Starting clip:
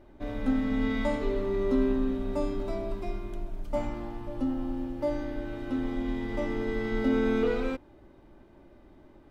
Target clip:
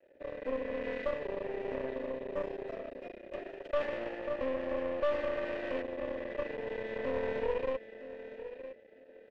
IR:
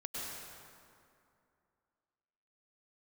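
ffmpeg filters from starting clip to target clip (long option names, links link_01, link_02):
-filter_complex "[0:a]asettb=1/sr,asplit=3[link_01][link_02][link_03];[link_01]atrim=end=3.334[link_04];[link_02]atrim=start=3.33:end=5.82,asetpts=PTS-STARTPTS,afade=type=in:duration=0.004:curve=qsin,afade=type=out:start_time=2.486:duration=0.004:curve=qsin,asplit=2[link_05][link_06];[link_06]highpass=frequency=720:poles=1,volume=21dB,asoftclip=type=tanh:threshold=-17.5dB[link_07];[link_05][link_07]amix=inputs=2:normalize=0,lowpass=frequency=2700:poles=1,volume=-6dB[link_08];[link_03]atrim=start=5.816[link_09];[link_04][link_08]acrossfade=duration=0.004:curve1=hsin:curve2=qsin[link_10];[link_10][link_09]acrossfade=duration=0.004:curve1=qsin:curve2=hsin,aeval=exprs='0.211*sin(PI/2*1.78*val(0)/0.211)':channel_layout=same,aecho=1:1:962|1924|2886:0.266|0.0692|0.018,aeval=exprs='max(val(0),0)':channel_layout=same,asplit=3[link_11][link_12][link_13];[link_11]bandpass=frequency=530:width_type=q:width=8,volume=0dB[link_14];[link_12]bandpass=frequency=1840:width_type=q:width=8,volume=-6dB[link_15];[link_13]bandpass=frequency=2480:width_type=q:width=8,volume=-9dB[link_16];[link_14][link_15][link_16]amix=inputs=3:normalize=0,aeval=exprs='(tanh(25.1*val(0)+0.7)-tanh(0.7))/25.1':channel_layout=same,volume=4.5dB"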